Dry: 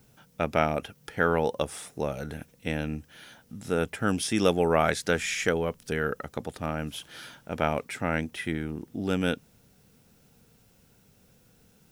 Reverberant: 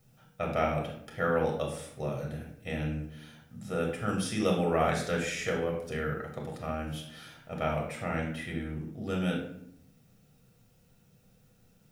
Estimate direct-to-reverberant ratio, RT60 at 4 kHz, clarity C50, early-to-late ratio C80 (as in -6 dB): -0.5 dB, 0.45 s, 5.0 dB, 8.5 dB